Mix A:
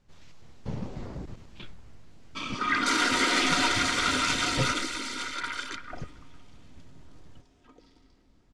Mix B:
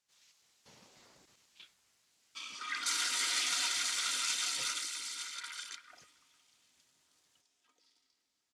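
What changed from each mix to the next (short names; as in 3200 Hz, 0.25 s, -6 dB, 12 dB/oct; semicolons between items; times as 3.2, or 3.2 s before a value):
master: add differentiator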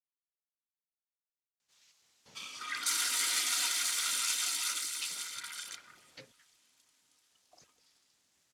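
speech: entry +1.60 s; background: remove LPF 7500 Hz 12 dB/oct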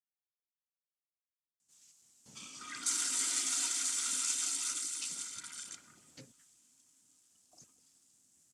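background: add air absorption 75 m; master: add graphic EQ 125/250/500/1000/2000/4000/8000 Hz +4/+7/-5/-4/-7/-7/+12 dB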